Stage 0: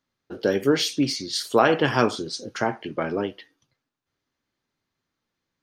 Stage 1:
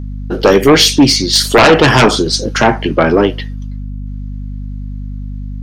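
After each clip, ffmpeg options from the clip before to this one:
-af "aeval=exprs='val(0)+0.0112*(sin(2*PI*50*n/s)+sin(2*PI*2*50*n/s)/2+sin(2*PI*3*50*n/s)/3+sin(2*PI*4*50*n/s)/4+sin(2*PI*5*50*n/s)/5)':c=same,aeval=exprs='0.631*sin(PI/2*3.55*val(0)/0.631)':c=same,volume=1.33"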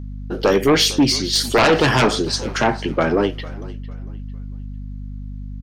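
-filter_complex "[0:a]asplit=4[s0][s1][s2][s3];[s1]adelay=451,afreqshift=-42,volume=0.112[s4];[s2]adelay=902,afreqshift=-84,volume=0.0359[s5];[s3]adelay=1353,afreqshift=-126,volume=0.0115[s6];[s0][s4][s5][s6]amix=inputs=4:normalize=0,volume=0.422"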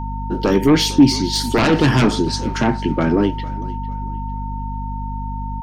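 -af "lowshelf=f=380:t=q:w=1.5:g=7,aeval=exprs='val(0)+0.0501*sin(2*PI*910*n/s)':c=same,volume=0.708"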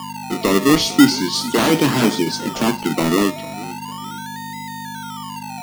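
-filter_complex "[0:a]highpass=f=160:w=0.5412,highpass=f=160:w=1.3066,acrossover=split=2200[s0][s1];[s0]acrusher=samples=22:mix=1:aa=0.000001:lfo=1:lforange=13.2:lforate=0.38[s2];[s2][s1]amix=inputs=2:normalize=0"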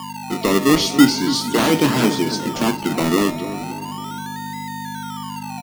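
-filter_complex "[0:a]asplit=2[s0][s1];[s1]adelay=280,lowpass=f=980:p=1,volume=0.299,asplit=2[s2][s3];[s3]adelay=280,lowpass=f=980:p=1,volume=0.44,asplit=2[s4][s5];[s5]adelay=280,lowpass=f=980:p=1,volume=0.44,asplit=2[s6][s7];[s7]adelay=280,lowpass=f=980:p=1,volume=0.44,asplit=2[s8][s9];[s9]adelay=280,lowpass=f=980:p=1,volume=0.44[s10];[s0][s2][s4][s6][s8][s10]amix=inputs=6:normalize=0,volume=0.891"

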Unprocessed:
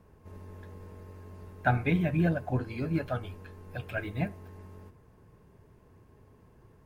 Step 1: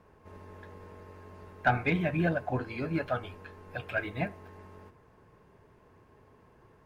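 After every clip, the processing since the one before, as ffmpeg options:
-filter_complex "[0:a]asplit=2[s0][s1];[s1]highpass=f=720:p=1,volume=3.16,asoftclip=type=tanh:threshold=0.237[s2];[s0][s2]amix=inputs=2:normalize=0,lowpass=f=2700:p=1,volume=0.501"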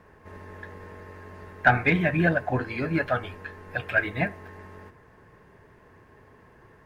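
-af "equalizer=f=1800:t=o:w=0.41:g=8.5,volume=1.78"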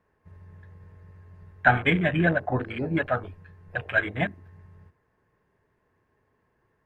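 -af "afwtdn=0.0251"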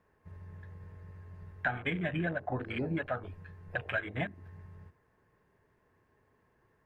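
-af "acompressor=threshold=0.0282:ratio=5"

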